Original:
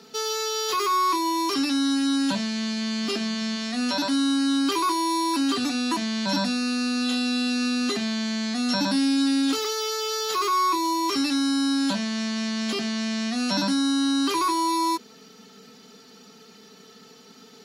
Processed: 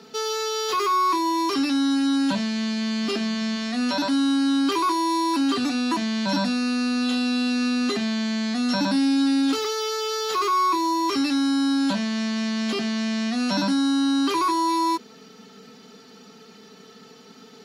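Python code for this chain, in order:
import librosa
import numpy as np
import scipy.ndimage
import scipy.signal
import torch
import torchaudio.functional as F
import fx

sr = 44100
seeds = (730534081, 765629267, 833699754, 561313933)

p1 = fx.high_shelf(x, sr, hz=4900.0, db=-7.5)
p2 = 10.0 ** (-25.5 / 20.0) * np.tanh(p1 / 10.0 ** (-25.5 / 20.0))
y = p1 + (p2 * librosa.db_to_amplitude(-7.5))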